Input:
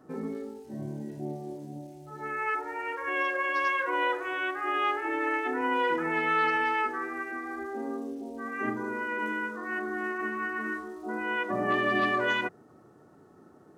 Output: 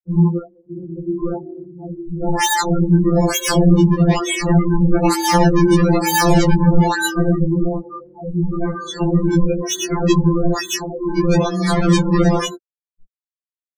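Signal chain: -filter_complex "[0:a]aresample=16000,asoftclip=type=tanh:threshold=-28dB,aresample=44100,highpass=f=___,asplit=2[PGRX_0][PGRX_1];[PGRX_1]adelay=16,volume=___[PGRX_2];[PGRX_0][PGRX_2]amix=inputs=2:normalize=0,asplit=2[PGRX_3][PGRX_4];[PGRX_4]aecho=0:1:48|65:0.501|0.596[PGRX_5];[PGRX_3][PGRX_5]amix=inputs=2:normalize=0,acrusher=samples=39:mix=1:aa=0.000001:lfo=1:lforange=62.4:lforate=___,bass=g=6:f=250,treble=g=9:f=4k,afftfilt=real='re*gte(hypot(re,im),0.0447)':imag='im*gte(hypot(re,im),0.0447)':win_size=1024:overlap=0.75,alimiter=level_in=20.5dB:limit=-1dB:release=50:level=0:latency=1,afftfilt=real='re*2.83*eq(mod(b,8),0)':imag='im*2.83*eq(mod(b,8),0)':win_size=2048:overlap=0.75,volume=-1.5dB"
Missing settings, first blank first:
160, -13dB, 1.1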